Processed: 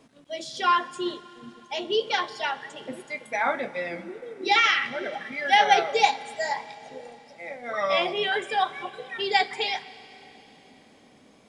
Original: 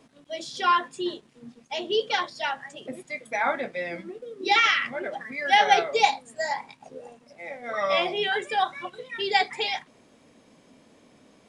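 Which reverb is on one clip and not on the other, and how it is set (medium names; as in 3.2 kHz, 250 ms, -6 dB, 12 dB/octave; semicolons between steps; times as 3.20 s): Schroeder reverb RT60 3.9 s, combs from 29 ms, DRR 16 dB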